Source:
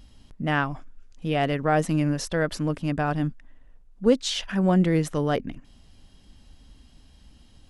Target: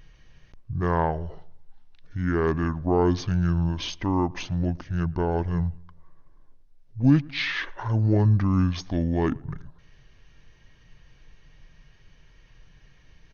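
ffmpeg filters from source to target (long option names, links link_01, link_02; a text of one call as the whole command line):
ffmpeg -i in.wav -filter_complex "[0:a]asplit=2[link_01][link_02];[link_02]adelay=67,lowpass=frequency=3700:poles=1,volume=-24dB,asplit=2[link_03][link_04];[link_04]adelay=67,lowpass=frequency=3700:poles=1,volume=0.5,asplit=2[link_05][link_06];[link_06]adelay=67,lowpass=frequency=3700:poles=1,volume=0.5[link_07];[link_01][link_03][link_05][link_07]amix=inputs=4:normalize=0,asetrate=25442,aresample=44100" out.wav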